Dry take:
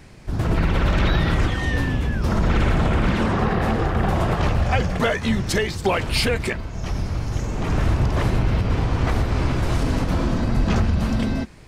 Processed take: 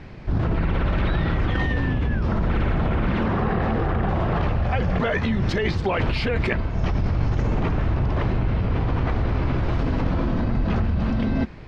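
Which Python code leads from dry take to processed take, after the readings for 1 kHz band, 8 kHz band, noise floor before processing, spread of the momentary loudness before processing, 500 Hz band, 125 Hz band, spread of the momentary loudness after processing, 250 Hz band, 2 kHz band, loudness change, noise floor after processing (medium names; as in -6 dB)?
-2.5 dB, under -15 dB, -31 dBFS, 6 LU, -2.0 dB, -1.0 dB, 1 LU, -1.0 dB, -2.5 dB, -1.5 dB, -26 dBFS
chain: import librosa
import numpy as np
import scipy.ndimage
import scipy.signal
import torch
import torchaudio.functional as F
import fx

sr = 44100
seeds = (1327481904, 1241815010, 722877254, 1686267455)

p1 = fx.over_compress(x, sr, threshold_db=-25.0, ratio=-0.5)
p2 = x + F.gain(torch.from_numpy(p1), 0.0).numpy()
p3 = fx.air_absorb(p2, sr, metres=240.0)
y = F.gain(torch.from_numpy(p3), -4.0).numpy()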